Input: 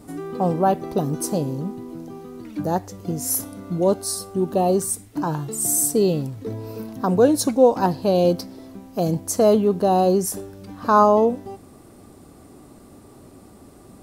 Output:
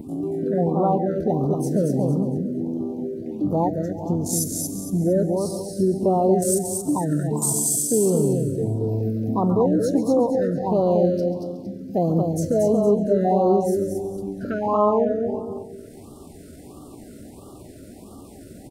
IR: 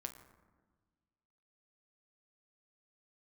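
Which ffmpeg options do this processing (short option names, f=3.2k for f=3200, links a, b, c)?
-filter_complex "[0:a]afwtdn=0.0316,adynamicequalizer=threshold=0.00501:dfrequency=6100:dqfactor=1.9:tfrequency=6100:tqfactor=1.9:attack=5:release=100:ratio=0.375:range=2:mode=boostabove:tftype=bell,asplit=2[a][b];[b]acompressor=threshold=-29dB:ratio=10,volume=-0.5dB[c];[a][c]amix=inputs=2:normalize=0,alimiter=limit=-12.5dB:level=0:latency=1:release=229,acompressor=mode=upward:threshold=-30dB:ratio=2.5,atempo=0.75,aecho=1:1:230|460|690|920:0.631|0.202|0.0646|0.0207,asplit=2[d][e];[1:a]atrim=start_sample=2205,adelay=136[f];[e][f]afir=irnorm=-1:irlink=0,volume=-8.5dB[g];[d][g]amix=inputs=2:normalize=0,afftfilt=real='re*(1-between(b*sr/1024,910*pow(2000/910,0.5+0.5*sin(2*PI*1.5*pts/sr))/1.41,910*pow(2000/910,0.5+0.5*sin(2*PI*1.5*pts/sr))*1.41))':imag='im*(1-between(b*sr/1024,910*pow(2000/910,0.5+0.5*sin(2*PI*1.5*pts/sr))/1.41,910*pow(2000/910,0.5+0.5*sin(2*PI*1.5*pts/sr))*1.41))':win_size=1024:overlap=0.75"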